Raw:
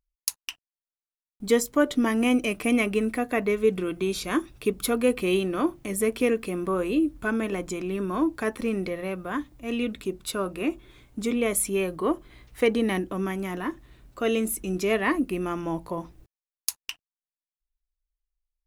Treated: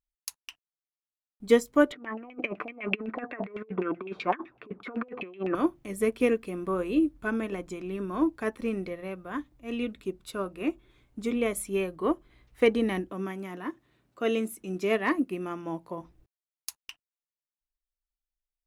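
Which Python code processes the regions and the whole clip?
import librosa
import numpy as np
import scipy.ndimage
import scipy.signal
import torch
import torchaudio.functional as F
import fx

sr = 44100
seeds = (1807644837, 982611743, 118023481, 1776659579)

y = fx.chain(x, sr, fx.highpass(hz=220.0, slope=12),
    fx.over_compress(threshold_db=-30.0, ratio=-0.5),
    fx.filter_lfo_lowpass(shape='saw_down', hz=7.9, low_hz=660.0, high_hz=2700.0, q=4.5), at=(1.92, 5.55))
y = fx.chain(y, sr, fx.highpass(hz=140.0, slope=12),
    fx.clip_hard(threshold_db=-12.5), at=(13.1, 16.01))
y = fx.high_shelf(y, sr, hz=4800.0, db=-6.0)
y = fx.upward_expand(y, sr, threshold_db=-37.0, expansion=1.5)
y = y * 10.0 ** (1.5 / 20.0)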